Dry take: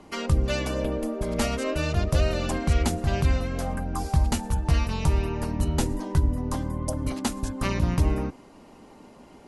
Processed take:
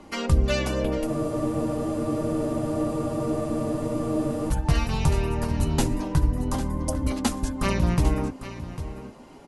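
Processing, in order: echo 0.8 s -12.5 dB; flange 0.28 Hz, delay 3.4 ms, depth 5.3 ms, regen -52%; spectral freeze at 1.08, 3.41 s; gain +6 dB

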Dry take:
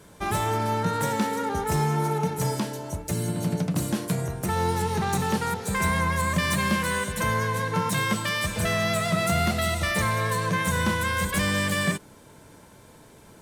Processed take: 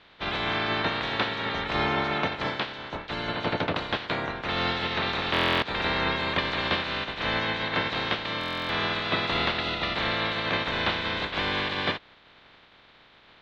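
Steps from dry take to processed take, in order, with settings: spectral limiter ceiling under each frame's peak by 27 dB; elliptic low-pass 3800 Hz, stop band 80 dB; stuck buffer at 5.32/8.39, samples 1024, times 12

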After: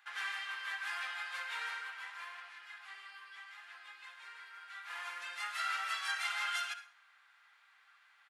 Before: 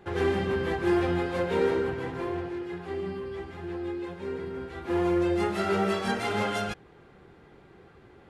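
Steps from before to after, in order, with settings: inverse Chebyshev high-pass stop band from 280 Hz, stop band 70 dB; feedback echo 64 ms, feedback 56%, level -22 dB; on a send at -11 dB: reverb RT60 0.45 s, pre-delay 53 ms; on the sum: gain -2 dB

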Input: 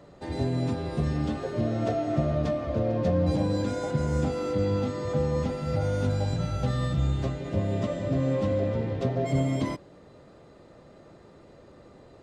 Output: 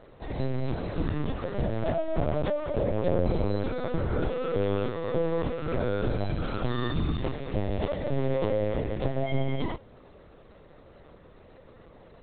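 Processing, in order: HPF 74 Hz 6 dB/oct; high shelf 2900 Hz +6 dB; LPC vocoder at 8 kHz pitch kept

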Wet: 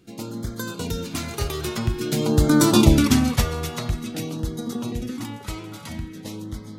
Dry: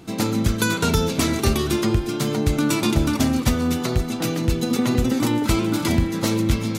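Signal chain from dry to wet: Doppler pass-by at 2.78, 13 m/s, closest 5.3 m; LFO notch sine 0.49 Hz 230–2700 Hz; gain +5.5 dB

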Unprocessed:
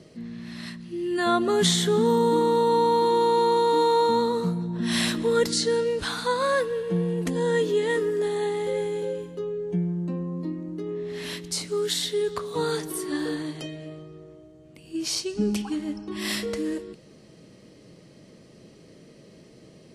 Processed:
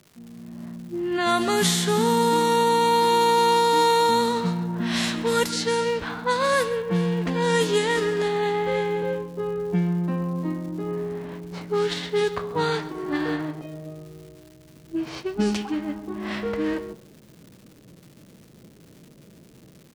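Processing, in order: spectral whitening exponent 0.6; low-pass opened by the level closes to 330 Hz, open at -18 dBFS; AGC gain up to 11.5 dB; crackle 350/s -33 dBFS; echo 0.133 s -17.5 dB; gain -8 dB

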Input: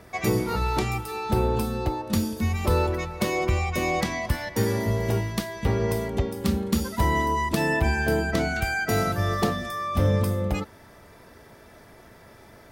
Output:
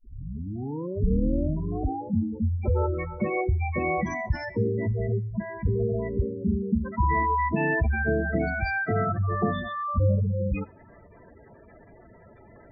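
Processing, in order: tape start at the beginning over 2.16 s; spectral gate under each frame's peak -10 dB strong; on a send: reverb RT60 0.60 s, pre-delay 4 ms, DRR 19.5 dB

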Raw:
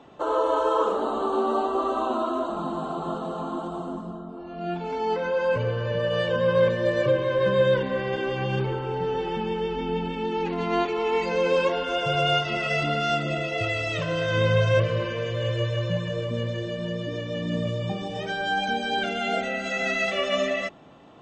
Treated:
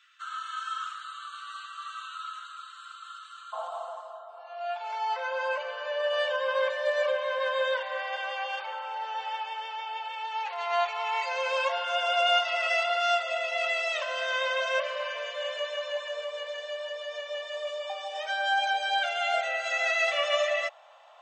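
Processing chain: steep high-pass 1300 Hz 72 dB/oct, from 3.52 s 570 Hz

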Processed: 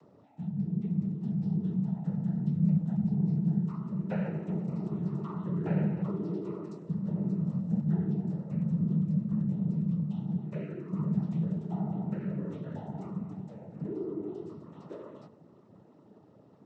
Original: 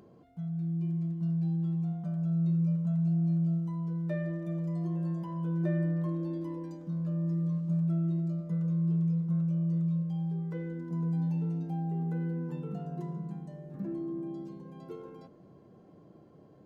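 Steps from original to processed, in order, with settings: noise vocoder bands 12

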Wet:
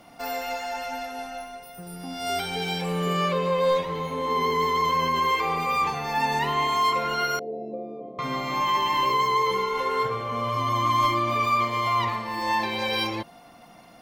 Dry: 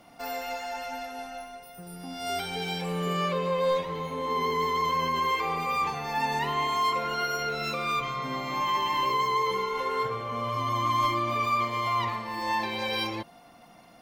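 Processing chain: 7.39–8.19 elliptic band-pass 190–660 Hz, stop band 40 dB; gain +3.5 dB

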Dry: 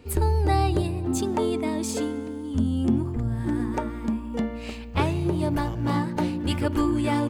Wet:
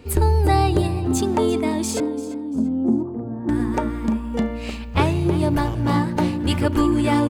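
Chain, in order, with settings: 2–3.49 Butterworth band-pass 420 Hz, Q 0.63; on a send: feedback echo 0.342 s, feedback 31%, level -16 dB; on the sum: gain +5 dB

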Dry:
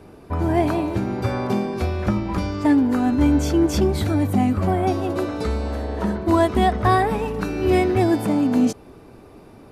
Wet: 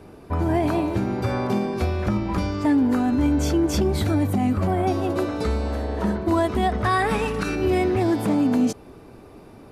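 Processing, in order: 6.84–7.55 spectral gain 1100–11000 Hz +7 dB; limiter -13 dBFS, peak gain reduction 8.5 dB; 7.9–8.34 Doppler distortion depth 0.13 ms

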